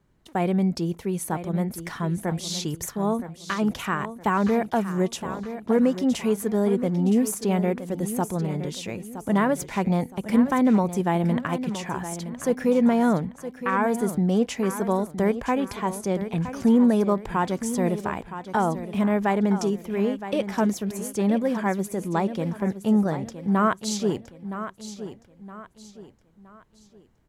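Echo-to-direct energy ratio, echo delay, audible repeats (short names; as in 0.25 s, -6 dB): -11.0 dB, 0.967 s, 3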